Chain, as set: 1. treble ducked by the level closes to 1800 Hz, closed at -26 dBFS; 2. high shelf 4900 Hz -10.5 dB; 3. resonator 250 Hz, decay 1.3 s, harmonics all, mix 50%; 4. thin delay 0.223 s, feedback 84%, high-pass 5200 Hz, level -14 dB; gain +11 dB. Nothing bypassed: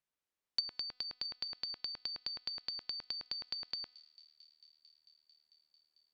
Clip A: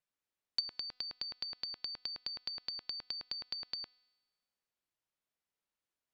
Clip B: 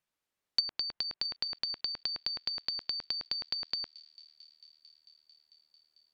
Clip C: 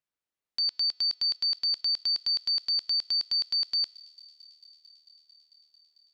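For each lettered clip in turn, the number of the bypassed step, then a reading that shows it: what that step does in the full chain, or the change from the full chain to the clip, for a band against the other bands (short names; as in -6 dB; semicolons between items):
4, echo-to-direct -26.5 dB to none; 3, loudness change +6.0 LU; 1, crest factor change -13.5 dB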